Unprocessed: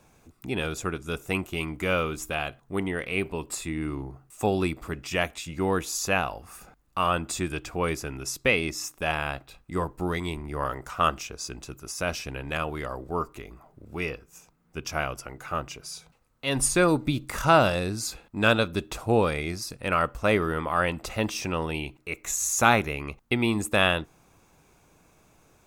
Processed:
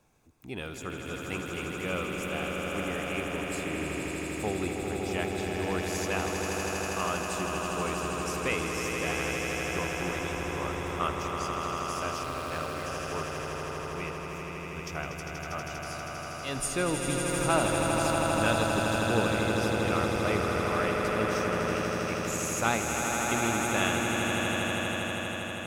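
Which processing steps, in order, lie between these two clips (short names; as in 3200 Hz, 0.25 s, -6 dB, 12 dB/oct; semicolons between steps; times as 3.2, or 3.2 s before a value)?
on a send: swelling echo 80 ms, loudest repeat 8, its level -6.5 dB; 12.23–12.86 on the sum: running maximum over 5 samples; gain -8.5 dB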